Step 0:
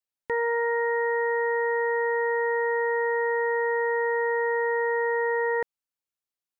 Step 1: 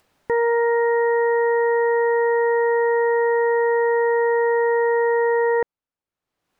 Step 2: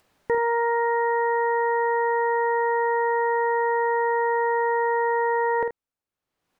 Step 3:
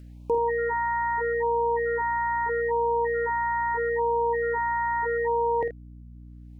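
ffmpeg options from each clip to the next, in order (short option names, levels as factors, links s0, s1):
-af "lowpass=f=1000:p=1,acompressor=mode=upward:threshold=0.00251:ratio=2.5,volume=2.66"
-af "aecho=1:1:50|80:0.355|0.237,volume=0.841"
-af "aeval=exprs='val(0)+0.00794*(sin(2*PI*60*n/s)+sin(2*PI*2*60*n/s)/2+sin(2*PI*3*60*n/s)/3+sin(2*PI*4*60*n/s)/4+sin(2*PI*5*60*n/s)/5)':c=same,afftfilt=real='re*(1-between(b*sr/1024,410*pow(1700/410,0.5+0.5*sin(2*PI*0.78*pts/sr))/1.41,410*pow(1700/410,0.5+0.5*sin(2*PI*0.78*pts/sr))*1.41))':imag='im*(1-between(b*sr/1024,410*pow(1700/410,0.5+0.5*sin(2*PI*0.78*pts/sr))/1.41,410*pow(1700/410,0.5+0.5*sin(2*PI*0.78*pts/sr))*1.41))':win_size=1024:overlap=0.75,volume=0.891"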